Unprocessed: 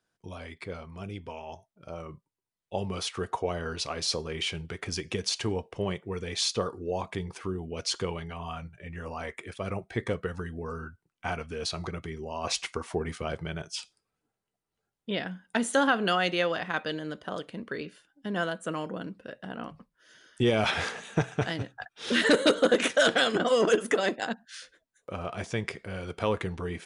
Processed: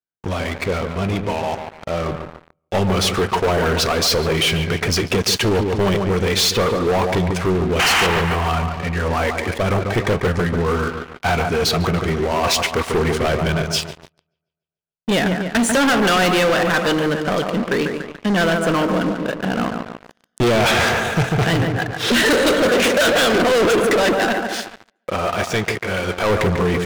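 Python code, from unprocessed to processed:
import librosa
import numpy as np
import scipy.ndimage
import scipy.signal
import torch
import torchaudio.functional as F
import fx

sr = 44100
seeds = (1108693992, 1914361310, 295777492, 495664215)

y = fx.leveller(x, sr, passes=2)
y = fx.high_shelf(y, sr, hz=8400.0, db=-9.0)
y = fx.spec_paint(y, sr, seeds[0], shape='noise', start_s=7.79, length_s=0.28, low_hz=660.0, high_hz=3200.0, level_db=-20.0)
y = fx.low_shelf(y, sr, hz=360.0, db=-9.5, at=(24.24, 26.3))
y = fx.echo_wet_lowpass(y, sr, ms=144, feedback_pct=50, hz=2100.0, wet_db=-8.0)
y = fx.leveller(y, sr, passes=5)
y = y * 10.0 ** (-6.5 / 20.0)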